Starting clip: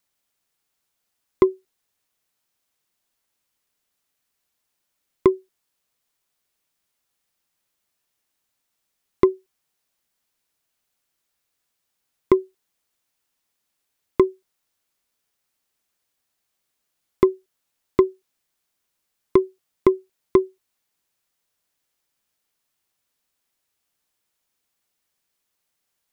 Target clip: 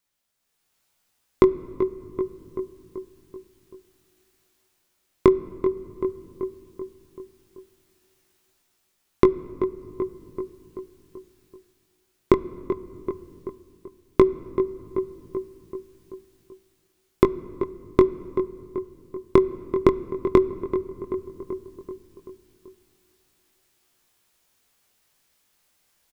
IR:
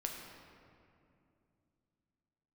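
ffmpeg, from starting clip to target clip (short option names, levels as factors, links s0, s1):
-filter_complex "[0:a]flanger=delay=17:depth=6.2:speed=0.13,asplit=2[s0][s1];[s1]adelay=384,lowpass=f=2100:p=1,volume=0.211,asplit=2[s2][s3];[s3]adelay=384,lowpass=f=2100:p=1,volume=0.55,asplit=2[s4][s5];[s5]adelay=384,lowpass=f=2100:p=1,volume=0.55,asplit=2[s6][s7];[s7]adelay=384,lowpass=f=2100:p=1,volume=0.55,asplit=2[s8][s9];[s9]adelay=384,lowpass=f=2100:p=1,volume=0.55,asplit=2[s10][s11];[s11]adelay=384,lowpass=f=2100:p=1,volume=0.55[s12];[s0][s2][s4][s6][s8][s10][s12]amix=inputs=7:normalize=0,acompressor=threshold=0.1:ratio=6,asplit=2[s13][s14];[1:a]atrim=start_sample=2205,lowshelf=f=130:g=11.5[s15];[s14][s15]afir=irnorm=-1:irlink=0,volume=0.2[s16];[s13][s16]amix=inputs=2:normalize=0,dynaudnorm=f=190:g=7:m=3.76"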